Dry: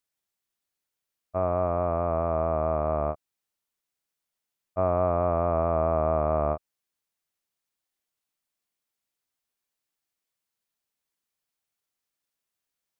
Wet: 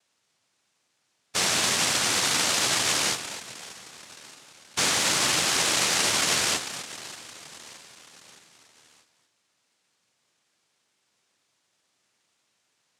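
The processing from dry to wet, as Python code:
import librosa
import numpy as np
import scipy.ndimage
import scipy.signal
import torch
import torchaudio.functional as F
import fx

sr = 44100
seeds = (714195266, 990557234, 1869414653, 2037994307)

p1 = scipy.signal.sosfilt(scipy.signal.butter(2, 1200.0, 'highpass', fs=sr, output='sos'), x)
p2 = p1 + fx.echo_feedback(p1, sr, ms=618, feedback_pct=53, wet_db=-23.0, dry=0)
p3 = fx.fold_sine(p2, sr, drive_db=10, ceiling_db=-22.5)
p4 = p3 + 10.0 ** (-12.0 / 20.0) * np.pad(p3, (int(243 * sr / 1000.0), 0))[:len(p3)]
p5 = fx.noise_vocoder(p4, sr, seeds[0], bands=1)
y = p5 * librosa.db_to_amplitude(3.5)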